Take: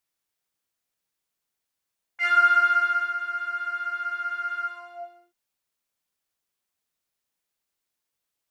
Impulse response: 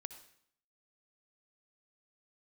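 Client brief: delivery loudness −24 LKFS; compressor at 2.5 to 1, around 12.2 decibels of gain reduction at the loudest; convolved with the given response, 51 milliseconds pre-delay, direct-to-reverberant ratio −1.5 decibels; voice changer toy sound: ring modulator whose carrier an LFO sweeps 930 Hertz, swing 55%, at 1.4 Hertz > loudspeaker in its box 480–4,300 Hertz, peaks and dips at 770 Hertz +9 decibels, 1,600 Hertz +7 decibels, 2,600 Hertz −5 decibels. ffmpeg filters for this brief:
-filter_complex "[0:a]acompressor=threshold=-34dB:ratio=2.5,asplit=2[link_01][link_02];[1:a]atrim=start_sample=2205,adelay=51[link_03];[link_02][link_03]afir=irnorm=-1:irlink=0,volume=5.5dB[link_04];[link_01][link_04]amix=inputs=2:normalize=0,aeval=exprs='val(0)*sin(2*PI*930*n/s+930*0.55/1.4*sin(2*PI*1.4*n/s))':channel_layout=same,highpass=480,equalizer=frequency=770:width_type=q:width=4:gain=9,equalizer=frequency=1600:width_type=q:width=4:gain=7,equalizer=frequency=2600:width_type=q:width=4:gain=-5,lowpass=frequency=4300:width=0.5412,lowpass=frequency=4300:width=1.3066,volume=6.5dB"

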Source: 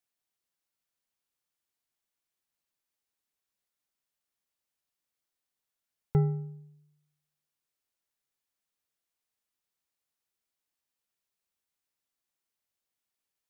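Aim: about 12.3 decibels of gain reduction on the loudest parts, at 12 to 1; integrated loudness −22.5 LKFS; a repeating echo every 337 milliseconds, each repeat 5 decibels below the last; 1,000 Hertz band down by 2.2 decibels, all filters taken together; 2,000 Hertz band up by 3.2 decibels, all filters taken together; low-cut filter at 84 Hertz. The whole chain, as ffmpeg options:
ffmpeg -i in.wav -af "highpass=84,equalizer=frequency=1000:width_type=o:gain=-4,equalizer=frequency=2000:width_type=o:gain=4.5,acompressor=threshold=-33dB:ratio=12,aecho=1:1:337|674|1011|1348|1685|2022|2359:0.562|0.315|0.176|0.0988|0.0553|0.031|0.0173,volume=21.5dB" out.wav

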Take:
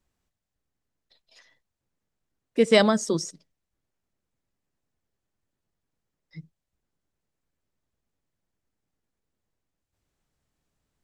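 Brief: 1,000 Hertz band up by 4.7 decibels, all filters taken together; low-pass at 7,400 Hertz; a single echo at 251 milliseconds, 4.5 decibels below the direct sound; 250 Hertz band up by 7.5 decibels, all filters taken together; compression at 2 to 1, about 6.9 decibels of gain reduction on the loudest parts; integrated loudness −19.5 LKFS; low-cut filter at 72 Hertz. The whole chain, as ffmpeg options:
ffmpeg -i in.wav -af "highpass=72,lowpass=7400,equalizer=frequency=250:width_type=o:gain=9,equalizer=frequency=1000:width_type=o:gain=5.5,acompressor=threshold=-21dB:ratio=2,aecho=1:1:251:0.596,volume=3.5dB" out.wav

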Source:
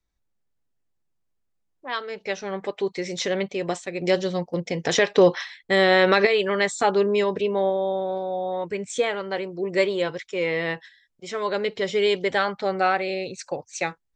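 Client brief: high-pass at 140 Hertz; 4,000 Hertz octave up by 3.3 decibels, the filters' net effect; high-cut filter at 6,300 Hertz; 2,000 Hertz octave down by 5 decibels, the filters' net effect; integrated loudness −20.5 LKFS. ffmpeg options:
ffmpeg -i in.wav -af "highpass=140,lowpass=6300,equalizer=frequency=2000:width_type=o:gain=-7.5,equalizer=frequency=4000:width_type=o:gain=7,volume=4dB" out.wav

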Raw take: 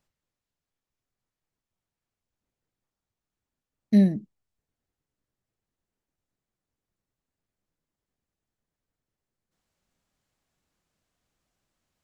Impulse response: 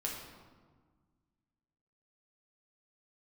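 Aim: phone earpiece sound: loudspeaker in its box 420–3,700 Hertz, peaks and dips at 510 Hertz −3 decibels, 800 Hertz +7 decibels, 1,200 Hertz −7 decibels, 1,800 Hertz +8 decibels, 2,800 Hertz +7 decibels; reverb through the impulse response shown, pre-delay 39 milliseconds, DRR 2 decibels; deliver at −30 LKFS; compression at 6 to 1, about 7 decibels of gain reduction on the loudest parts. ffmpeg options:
-filter_complex "[0:a]acompressor=threshold=-21dB:ratio=6,asplit=2[link_01][link_02];[1:a]atrim=start_sample=2205,adelay=39[link_03];[link_02][link_03]afir=irnorm=-1:irlink=0,volume=-4dB[link_04];[link_01][link_04]amix=inputs=2:normalize=0,highpass=420,equalizer=frequency=510:width_type=q:width=4:gain=-3,equalizer=frequency=800:width_type=q:width=4:gain=7,equalizer=frequency=1200:width_type=q:width=4:gain=-7,equalizer=frequency=1800:width_type=q:width=4:gain=8,equalizer=frequency=2800:width_type=q:width=4:gain=7,lowpass=frequency=3700:width=0.5412,lowpass=frequency=3700:width=1.3066,volume=8.5dB"

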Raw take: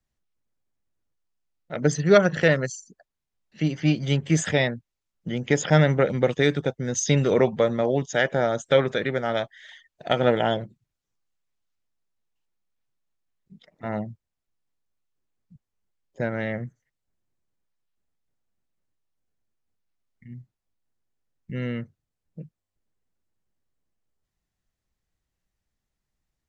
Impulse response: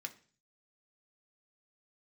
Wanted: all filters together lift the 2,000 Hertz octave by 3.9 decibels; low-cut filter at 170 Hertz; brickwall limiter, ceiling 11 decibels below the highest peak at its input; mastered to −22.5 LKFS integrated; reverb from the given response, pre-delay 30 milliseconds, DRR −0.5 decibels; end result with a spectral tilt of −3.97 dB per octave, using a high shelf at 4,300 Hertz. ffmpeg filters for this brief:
-filter_complex "[0:a]highpass=170,equalizer=frequency=2000:width_type=o:gain=4,highshelf=frequency=4300:gain=3.5,alimiter=limit=-11.5dB:level=0:latency=1,asplit=2[link_01][link_02];[1:a]atrim=start_sample=2205,adelay=30[link_03];[link_02][link_03]afir=irnorm=-1:irlink=0,volume=2.5dB[link_04];[link_01][link_04]amix=inputs=2:normalize=0,volume=0.5dB"

